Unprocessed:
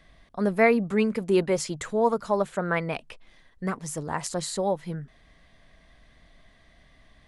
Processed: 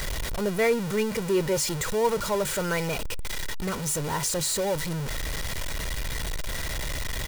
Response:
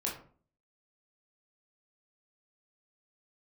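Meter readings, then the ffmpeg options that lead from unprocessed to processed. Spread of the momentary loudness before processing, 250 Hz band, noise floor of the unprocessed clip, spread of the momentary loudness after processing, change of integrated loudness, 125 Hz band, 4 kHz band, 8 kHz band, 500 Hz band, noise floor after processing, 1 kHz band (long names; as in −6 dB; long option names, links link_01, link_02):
13 LU, −3.0 dB, −58 dBFS, 8 LU, −1.5 dB, +3.0 dB, +9.0 dB, +8.5 dB, −1.0 dB, −31 dBFS, −2.0 dB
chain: -af "aeval=exprs='val(0)+0.5*0.0841*sgn(val(0))':channel_layout=same,bass=frequency=250:gain=3,treble=frequency=4000:gain=4,aecho=1:1:2.1:0.45,volume=-6.5dB"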